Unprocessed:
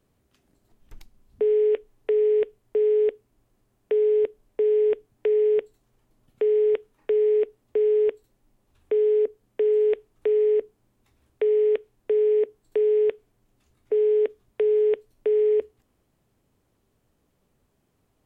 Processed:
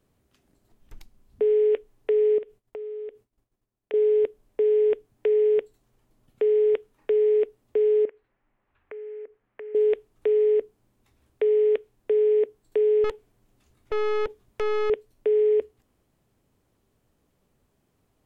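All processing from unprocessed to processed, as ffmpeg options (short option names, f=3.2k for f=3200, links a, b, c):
-filter_complex "[0:a]asettb=1/sr,asplit=3[a][b][c];[a]atrim=end=2.384[d];[b]atrim=start=2.38:end=3.94,asetpts=PTS-STARTPTS,afade=t=in:d=0.004:c=qsin,afade=t=out:st=1.556:d=0.004:c=qsin,agate=range=-33dB:threshold=-59dB:ratio=3:release=100:detection=peak,acompressor=threshold=-35dB:ratio=5:attack=3.2:release=140:knee=1:detection=peak[e];[c]atrim=start=3.936[f];[d][e]acrossfade=d=0.004:c1=hsin:c2=qsin[g];[g][f]acrossfade=d=0.004:c1=qsin:c2=hsin,asettb=1/sr,asplit=3[h][i][j];[h]atrim=end=8.054[k];[i]atrim=start=8.05:end=9.75,asetpts=PTS-STARTPTS,afade=t=in:d=0.004:c=qsin,afade=t=out:st=1.696:d=0.004:c=qsin,tiltshelf=f=890:g=-9.5,acompressor=threshold=-38dB:ratio=4:attack=3.2:release=140:knee=1:detection=peak,lowpass=f=2.1k:w=0.5412,lowpass=f=2.1k:w=1.3066[l];[j]atrim=start=9.746[m];[k][l]acrossfade=d=0.004:c1=hsin:c2=qsin[n];[n][m]acrossfade=d=0.004:c1=qsin:c2=hsin,asettb=1/sr,asplit=3[o][p][q];[o]atrim=end=13.044[r];[p]atrim=start=13.04:end=14.9,asetpts=PTS-STARTPTS,afade=t=in:d=0.004:c=qsin,afade=t=out:st=1.856:d=0.004:c=qsin,acontrast=51,aeval=exprs='(tanh(15.8*val(0)+0.7)-tanh(0.7))/15.8':c=same[s];[q]atrim=start=14.896[t];[r][s]acrossfade=d=0.004:c1=hsin:c2=qsin[u];[u][t]acrossfade=d=0.004:c1=qsin:c2=hsin"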